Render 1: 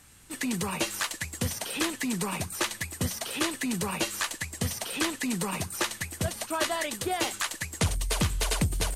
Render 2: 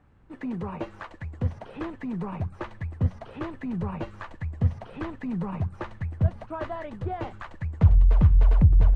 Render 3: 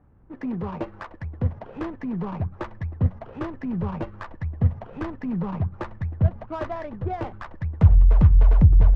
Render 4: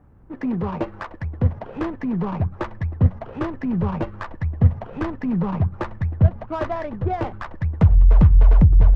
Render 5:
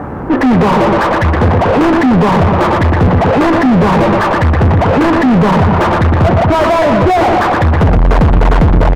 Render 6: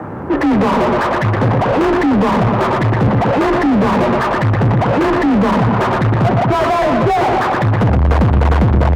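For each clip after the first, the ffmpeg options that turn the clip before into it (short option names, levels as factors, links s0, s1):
-af "lowpass=1000,asubboost=boost=5.5:cutoff=130"
-af "adynamicsmooth=sensitivity=5.5:basefreq=1300,volume=1.41"
-af "alimiter=limit=0.316:level=0:latency=1:release=417,volume=1.78"
-filter_complex "[0:a]aecho=1:1:119|238|357|476|595:0.266|0.13|0.0639|0.0313|0.0153,asplit=2[s0][s1];[s1]highpass=f=720:p=1,volume=282,asoftclip=type=tanh:threshold=0.794[s2];[s0][s2]amix=inputs=2:normalize=0,lowpass=f=1000:p=1,volume=0.501,volume=1.12"
-af "afreqshift=28,volume=0.631"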